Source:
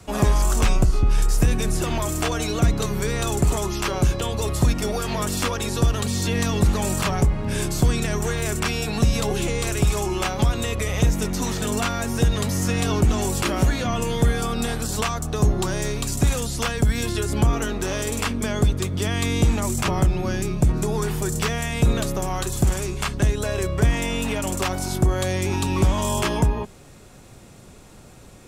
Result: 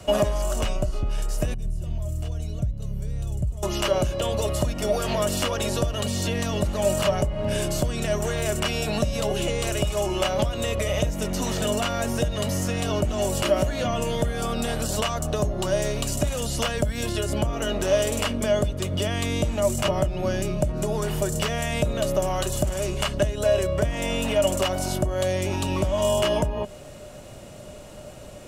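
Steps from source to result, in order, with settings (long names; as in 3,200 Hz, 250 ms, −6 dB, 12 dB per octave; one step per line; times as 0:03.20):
0:01.54–0:03.63: drawn EQ curve 110 Hz 0 dB, 290 Hz −18 dB, 1,300 Hz −27 dB, 9,400 Hz −18 dB
downward compressor, threshold −25 dBFS, peak gain reduction 11.5 dB
hollow resonant body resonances 600/2,900 Hz, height 18 dB, ringing for 75 ms
level +2 dB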